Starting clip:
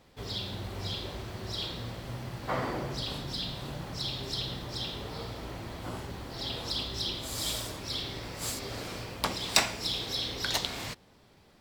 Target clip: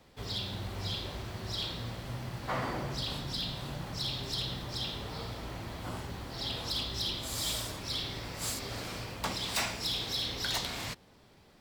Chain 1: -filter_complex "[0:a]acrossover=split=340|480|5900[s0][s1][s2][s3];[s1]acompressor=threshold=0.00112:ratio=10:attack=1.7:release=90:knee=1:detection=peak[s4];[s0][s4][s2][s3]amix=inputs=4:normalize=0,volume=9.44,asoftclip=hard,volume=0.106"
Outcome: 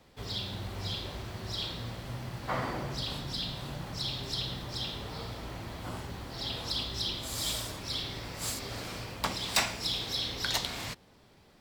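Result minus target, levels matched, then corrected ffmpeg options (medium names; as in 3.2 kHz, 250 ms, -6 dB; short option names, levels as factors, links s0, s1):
overload inside the chain: distortion -5 dB
-filter_complex "[0:a]acrossover=split=340|480|5900[s0][s1][s2][s3];[s1]acompressor=threshold=0.00112:ratio=10:attack=1.7:release=90:knee=1:detection=peak[s4];[s0][s4][s2][s3]amix=inputs=4:normalize=0,volume=23.7,asoftclip=hard,volume=0.0422"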